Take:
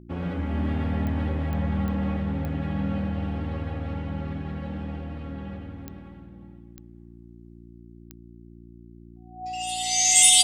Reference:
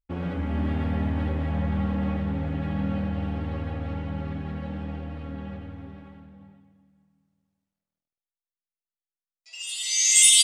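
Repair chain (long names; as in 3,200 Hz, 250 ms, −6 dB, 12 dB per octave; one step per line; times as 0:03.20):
click removal
hum removal 58 Hz, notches 6
notch filter 740 Hz, Q 30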